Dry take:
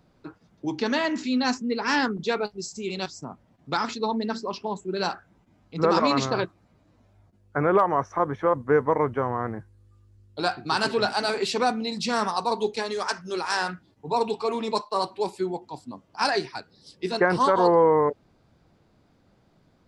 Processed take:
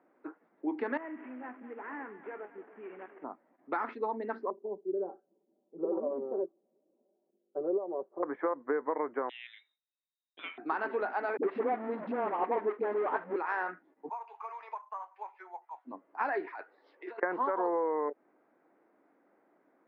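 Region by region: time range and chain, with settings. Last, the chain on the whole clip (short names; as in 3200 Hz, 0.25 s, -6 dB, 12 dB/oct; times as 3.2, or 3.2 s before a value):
0.97–3.24 CVSD 16 kbps + compressor 3:1, threshold -40 dBFS + split-band echo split 630 Hz, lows 0.294 s, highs 0.204 s, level -14 dB
4.5–8.23 ladder low-pass 580 Hz, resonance 45% + comb 5.2 ms, depth 74%
9.29–10.58 gate with hold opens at -43 dBFS, closes at -51 dBFS + inverted band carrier 3800 Hz
11.37–13.36 half-waves squared off + tilt shelf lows +7 dB, about 1200 Hz + dispersion highs, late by 61 ms, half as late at 320 Hz
14.09–15.85 HPF 830 Hz 24 dB/oct + air absorption 92 m + careless resampling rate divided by 6×, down filtered, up zero stuff
16.47–17.23 HPF 590 Hz + negative-ratio compressor -40 dBFS
whole clip: compressor 6:1, threshold -25 dBFS; elliptic band-pass 290–2000 Hz, stop band 60 dB; gain -2 dB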